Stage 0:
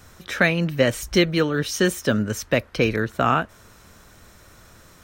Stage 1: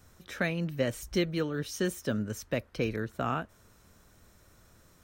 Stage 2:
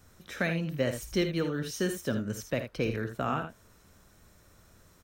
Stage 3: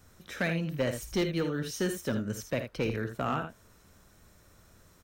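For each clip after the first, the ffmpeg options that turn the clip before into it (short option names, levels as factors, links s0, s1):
-af "equalizer=f=2100:w=0.33:g=-4.5,volume=0.355"
-af "aecho=1:1:54|79:0.266|0.316"
-af "asoftclip=type=hard:threshold=0.0794"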